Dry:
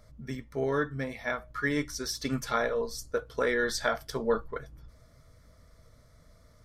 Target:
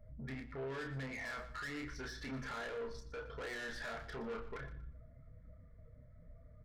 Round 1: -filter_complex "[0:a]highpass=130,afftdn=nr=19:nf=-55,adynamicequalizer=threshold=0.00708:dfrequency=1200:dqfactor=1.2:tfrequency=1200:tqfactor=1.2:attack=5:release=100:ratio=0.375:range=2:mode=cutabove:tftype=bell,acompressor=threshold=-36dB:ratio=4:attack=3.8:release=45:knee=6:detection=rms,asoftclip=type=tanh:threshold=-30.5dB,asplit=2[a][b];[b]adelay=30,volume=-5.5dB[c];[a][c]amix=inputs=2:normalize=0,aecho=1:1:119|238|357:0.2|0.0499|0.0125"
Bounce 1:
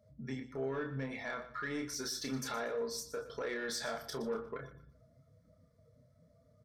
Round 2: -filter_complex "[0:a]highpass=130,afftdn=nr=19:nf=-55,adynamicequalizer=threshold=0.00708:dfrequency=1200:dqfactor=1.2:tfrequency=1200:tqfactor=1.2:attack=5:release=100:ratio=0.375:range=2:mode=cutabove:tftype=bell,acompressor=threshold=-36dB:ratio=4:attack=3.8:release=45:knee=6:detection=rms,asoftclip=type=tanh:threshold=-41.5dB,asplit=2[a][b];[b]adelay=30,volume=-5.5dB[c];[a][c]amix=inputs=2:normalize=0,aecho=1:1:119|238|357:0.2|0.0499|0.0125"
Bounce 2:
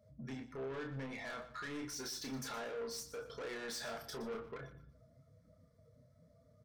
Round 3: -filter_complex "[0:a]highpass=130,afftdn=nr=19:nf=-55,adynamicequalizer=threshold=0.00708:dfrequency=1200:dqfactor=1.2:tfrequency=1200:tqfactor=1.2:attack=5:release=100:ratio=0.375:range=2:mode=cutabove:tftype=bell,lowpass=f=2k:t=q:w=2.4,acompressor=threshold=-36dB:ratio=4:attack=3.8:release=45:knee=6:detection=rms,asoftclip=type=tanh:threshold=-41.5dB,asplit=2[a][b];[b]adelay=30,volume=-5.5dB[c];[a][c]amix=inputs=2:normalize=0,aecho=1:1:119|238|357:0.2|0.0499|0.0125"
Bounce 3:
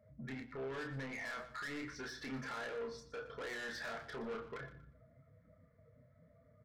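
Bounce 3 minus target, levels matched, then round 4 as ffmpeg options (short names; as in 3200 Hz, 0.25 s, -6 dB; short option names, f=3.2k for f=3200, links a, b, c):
125 Hz band -3.0 dB
-filter_complex "[0:a]afftdn=nr=19:nf=-55,adynamicequalizer=threshold=0.00708:dfrequency=1200:dqfactor=1.2:tfrequency=1200:tqfactor=1.2:attack=5:release=100:ratio=0.375:range=2:mode=cutabove:tftype=bell,lowpass=f=2k:t=q:w=2.4,acompressor=threshold=-36dB:ratio=4:attack=3.8:release=45:knee=6:detection=rms,asoftclip=type=tanh:threshold=-41.5dB,asplit=2[a][b];[b]adelay=30,volume=-5.5dB[c];[a][c]amix=inputs=2:normalize=0,aecho=1:1:119|238|357:0.2|0.0499|0.0125"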